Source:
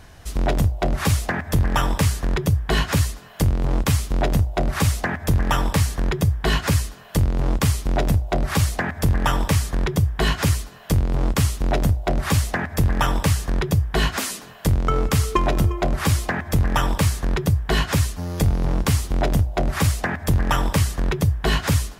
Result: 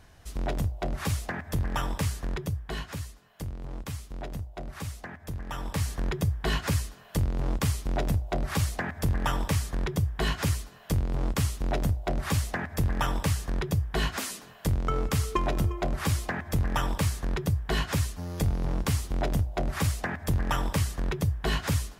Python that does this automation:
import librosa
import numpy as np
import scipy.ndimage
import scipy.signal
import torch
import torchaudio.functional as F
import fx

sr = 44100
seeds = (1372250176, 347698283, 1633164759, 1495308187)

y = fx.gain(x, sr, db=fx.line((2.28, -9.5), (2.97, -17.0), (5.48, -17.0), (5.9, -7.5)))